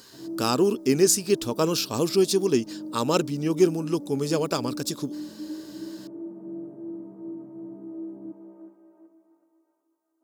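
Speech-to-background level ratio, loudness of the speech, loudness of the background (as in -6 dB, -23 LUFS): 14.0 dB, -24.5 LUFS, -38.5 LUFS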